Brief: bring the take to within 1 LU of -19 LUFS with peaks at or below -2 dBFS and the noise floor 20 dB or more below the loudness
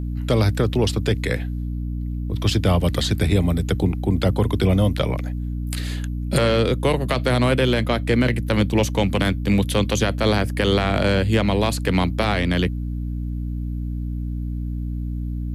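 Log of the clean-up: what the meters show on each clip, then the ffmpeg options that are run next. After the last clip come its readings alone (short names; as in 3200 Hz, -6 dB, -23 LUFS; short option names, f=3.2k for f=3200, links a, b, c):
hum 60 Hz; harmonics up to 300 Hz; hum level -23 dBFS; loudness -21.5 LUFS; peak -7.0 dBFS; loudness target -19.0 LUFS
-> -af "bandreject=f=60:t=h:w=6,bandreject=f=120:t=h:w=6,bandreject=f=180:t=h:w=6,bandreject=f=240:t=h:w=6,bandreject=f=300:t=h:w=6"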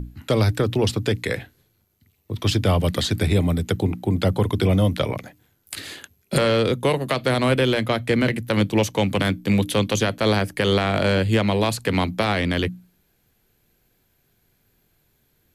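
hum none; loudness -21.5 LUFS; peak -8.0 dBFS; loudness target -19.0 LUFS
-> -af "volume=2.5dB"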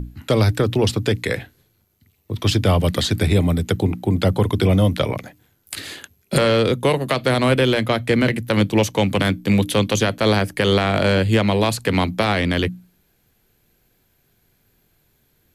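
loudness -19.0 LUFS; peak -5.5 dBFS; noise floor -64 dBFS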